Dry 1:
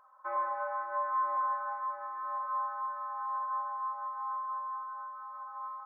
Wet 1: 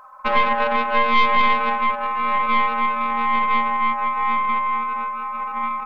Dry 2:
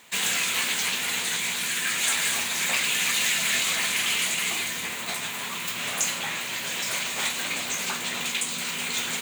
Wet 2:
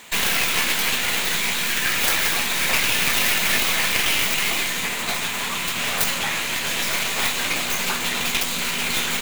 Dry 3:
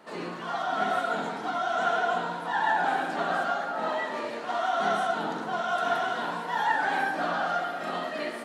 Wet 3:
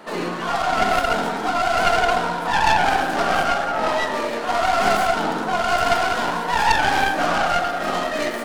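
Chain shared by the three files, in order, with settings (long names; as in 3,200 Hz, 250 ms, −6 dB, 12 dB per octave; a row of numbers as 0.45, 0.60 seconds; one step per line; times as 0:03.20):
stylus tracing distortion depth 0.25 ms
in parallel at −2 dB: downward compressor, threshold −35 dBFS
on the sum: loudness normalisation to −20 LKFS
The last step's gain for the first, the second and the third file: +11.5, +3.5, +6.0 decibels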